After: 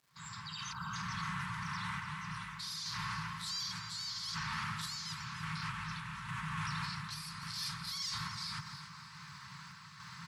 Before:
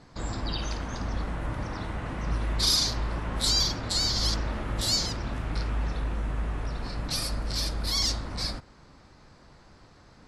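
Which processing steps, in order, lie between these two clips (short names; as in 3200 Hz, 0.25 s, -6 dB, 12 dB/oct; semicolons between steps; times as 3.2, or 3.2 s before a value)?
opening faded in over 1.21 s; Chebyshev band-stop 170–1000 Hz, order 4; spectral gain 0.72–0.94, 1600–11000 Hz -29 dB; HPF 130 Hz 24 dB/oct; comb 4.5 ms, depth 31%; reverse; compressor 6:1, threshold -42 dBFS, peak gain reduction 20 dB; reverse; limiter -40 dBFS, peak gain reduction 11 dB; crackle 580/s -68 dBFS; random-step tremolo; on a send: echo with dull and thin repeats by turns 0.145 s, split 1900 Hz, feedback 65%, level -7 dB; on the sum: gain +10.5 dB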